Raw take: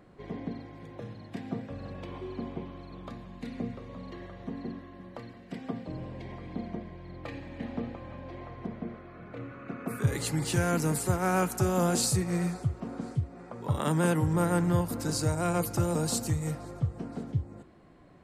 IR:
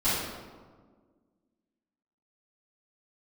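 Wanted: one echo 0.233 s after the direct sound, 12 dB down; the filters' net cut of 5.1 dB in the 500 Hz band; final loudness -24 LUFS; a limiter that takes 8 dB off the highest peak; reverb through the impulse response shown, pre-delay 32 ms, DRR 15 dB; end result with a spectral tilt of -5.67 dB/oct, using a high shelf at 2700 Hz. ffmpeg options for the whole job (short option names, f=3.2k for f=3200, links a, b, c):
-filter_complex "[0:a]equalizer=f=500:t=o:g=-6.5,highshelf=f=2.7k:g=-4.5,alimiter=limit=-23dB:level=0:latency=1,aecho=1:1:233:0.251,asplit=2[a][b];[1:a]atrim=start_sample=2205,adelay=32[c];[b][c]afir=irnorm=-1:irlink=0,volume=-27.5dB[d];[a][d]amix=inputs=2:normalize=0,volume=11.5dB"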